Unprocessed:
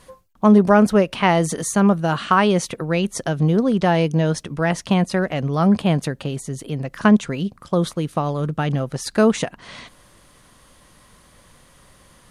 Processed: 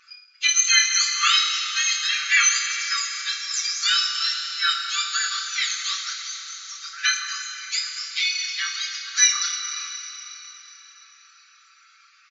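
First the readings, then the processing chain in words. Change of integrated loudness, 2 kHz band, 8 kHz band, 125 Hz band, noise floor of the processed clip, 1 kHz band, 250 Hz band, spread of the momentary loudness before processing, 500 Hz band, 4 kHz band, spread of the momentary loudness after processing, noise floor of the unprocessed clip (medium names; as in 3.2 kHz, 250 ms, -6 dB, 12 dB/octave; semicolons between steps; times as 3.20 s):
-1.5 dB, +4.5 dB, +12.5 dB, under -40 dB, -55 dBFS, -9.0 dB, under -40 dB, 12 LU, under -40 dB, +12.5 dB, 15 LU, -53 dBFS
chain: spectrum inverted on a logarithmic axis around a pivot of 1.6 kHz; comb 5.9 ms, depth 93%; flutter echo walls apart 4.5 m, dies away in 0.21 s; FFT band-pass 1.1–7.4 kHz; Schroeder reverb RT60 3.9 s, combs from 26 ms, DRR 3.5 dB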